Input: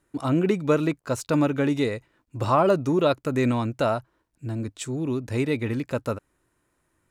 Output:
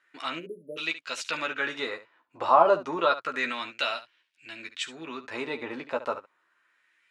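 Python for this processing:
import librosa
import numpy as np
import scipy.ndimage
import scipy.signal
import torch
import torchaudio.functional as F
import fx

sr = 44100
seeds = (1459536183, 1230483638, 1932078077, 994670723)

p1 = fx.weighting(x, sr, curve='D')
p2 = fx.filter_lfo_bandpass(p1, sr, shape='sine', hz=0.3, low_hz=860.0, high_hz=2700.0, q=2.0)
p3 = fx.dynamic_eq(p2, sr, hz=2200.0, q=1.8, threshold_db=-45.0, ratio=4.0, max_db=-7)
p4 = fx.spec_erase(p3, sr, start_s=0.39, length_s=0.38, low_hz=620.0, high_hz=9500.0)
p5 = p4 + fx.room_early_taps(p4, sr, ms=(12, 71), db=(-5.0, -13.5), dry=0)
y = p5 * 10.0 ** (4.5 / 20.0)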